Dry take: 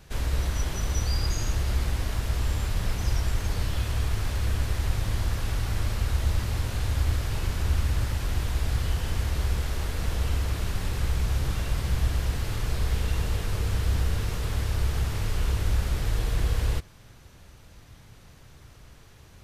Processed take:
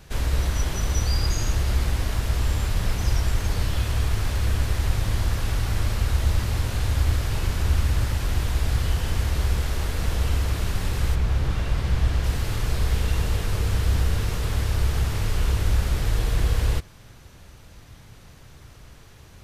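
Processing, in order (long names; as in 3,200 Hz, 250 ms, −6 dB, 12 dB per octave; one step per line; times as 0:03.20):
0:11.14–0:12.23: high-shelf EQ 4,600 Hz → 8,800 Hz −12 dB
level +3.5 dB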